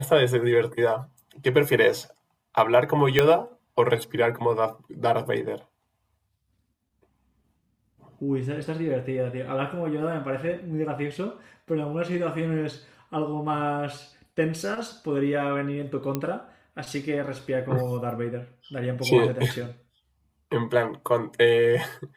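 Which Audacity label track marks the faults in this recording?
3.190000	3.190000	pop -5 dBFS
16.150000	16.150000	pop -13 dBFS

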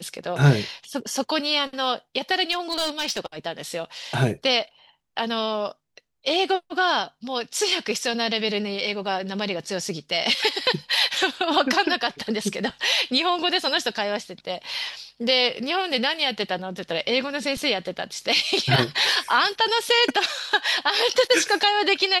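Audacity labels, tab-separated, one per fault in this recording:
2.510000	3.260000	clipped -19.5 dBFS

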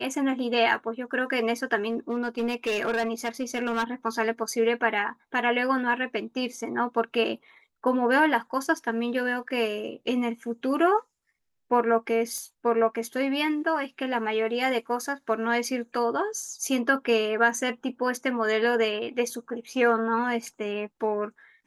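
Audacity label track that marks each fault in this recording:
1.890000	3.840000	clipped -22 dBFS
12.380000	12.380000	pop -23 dBFS

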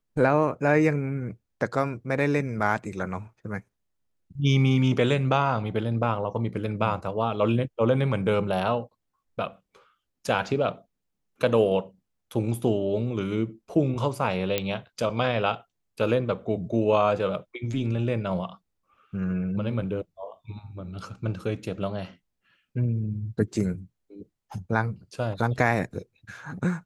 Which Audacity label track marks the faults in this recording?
14.580000	14.580000	pop -9 dBFS

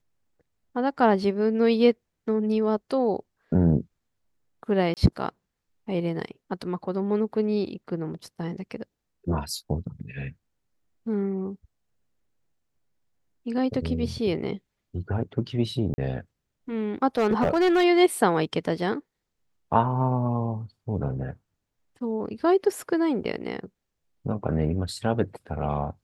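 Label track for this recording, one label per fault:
4.940000	4.970000	dropout 28 ms
15.940000	15.980000	dropout 40 ms
17.180000	17.850000	clipped -16.5 dBFS

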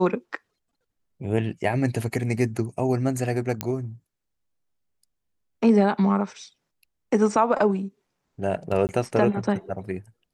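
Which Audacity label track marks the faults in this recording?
3.610000	3.610000	pop -9 dBFS
8.870000	8.890000	dropout 19 ms

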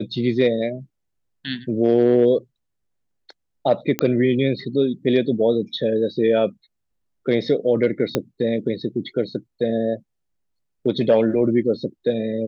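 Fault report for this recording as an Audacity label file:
3.990000	3.990000	pop -6 dBFS
8.150000	8.150000	pop -5 dBFS

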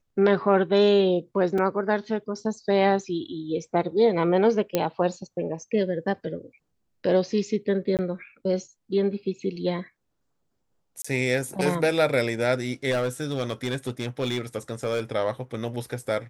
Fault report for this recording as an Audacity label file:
1.580000	1.580000	dropout 4.2 ms
4.750000	4.750000	pop -8 dBFS
7.970000	7.990000	dropout 18 ms
11.020000	11.040000	dropout 25 ms
12.900000	15.010000	clipped -21 dBFS

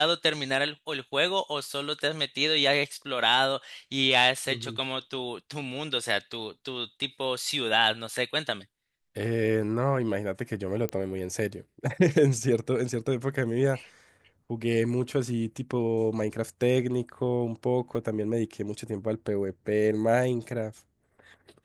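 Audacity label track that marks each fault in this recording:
10.890000	10.890000	pop -16 dBFS
17.950000	17.950000	dropout 3.4 ms

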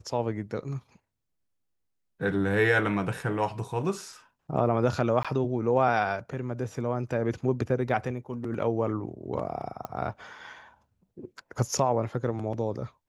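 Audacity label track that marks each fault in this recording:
5.230000	5.250000	dropout 16 ms
9.850000	9.850000	pop -22 dBFS

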